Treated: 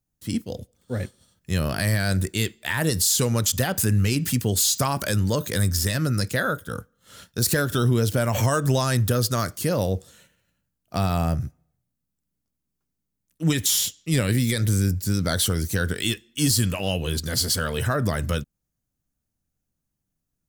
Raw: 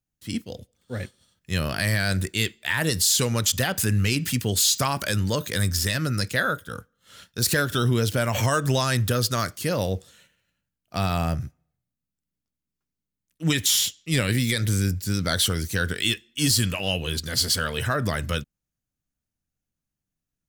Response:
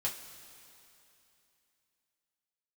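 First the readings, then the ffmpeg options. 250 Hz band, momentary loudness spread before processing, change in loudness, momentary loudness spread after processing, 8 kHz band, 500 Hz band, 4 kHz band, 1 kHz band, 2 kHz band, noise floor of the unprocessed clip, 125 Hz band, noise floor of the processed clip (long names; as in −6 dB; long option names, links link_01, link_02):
+2.0 dB, 12 LU, +0.5 dB, 10 LU, +0.5 dB, +1.5 dB, −2.5 dB, 0.0 dB, −2.5 dB, below −85 dBFS, +2.0 dB, −81 dBFS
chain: -filter_complex "[0:a]equalizer=frequency=2700:width=0.59:gain=-6.5,asplit=2[link_01][link_02];[link_02]acompressor=threshold=-31dB:ratio=6,volume=-1dB[link_03];[link_01][link_03]amix=inputs=2:normalize=0"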